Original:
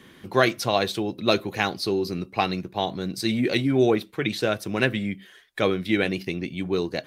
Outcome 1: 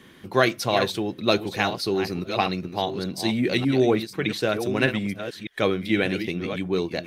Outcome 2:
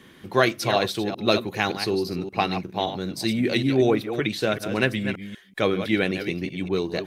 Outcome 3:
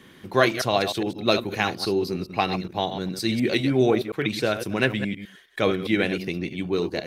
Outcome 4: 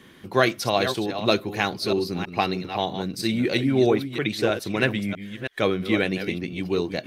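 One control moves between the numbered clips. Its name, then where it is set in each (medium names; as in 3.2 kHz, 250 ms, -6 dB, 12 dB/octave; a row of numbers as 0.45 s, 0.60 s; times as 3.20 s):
chunks repeated in reverse, time: 608 ms, 191 ms, 103 ms, 322 ms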